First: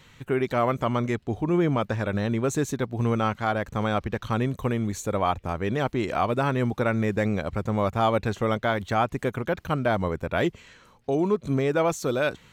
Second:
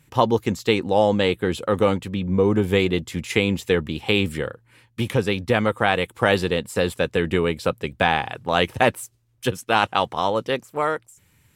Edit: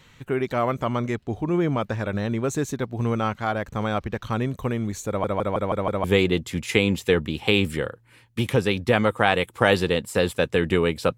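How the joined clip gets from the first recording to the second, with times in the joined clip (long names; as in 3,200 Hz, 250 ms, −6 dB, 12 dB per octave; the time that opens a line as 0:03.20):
first
0:05.08: stutter in place 0.16 s, 6 plays
0:06.04: continue with second from 0:02.65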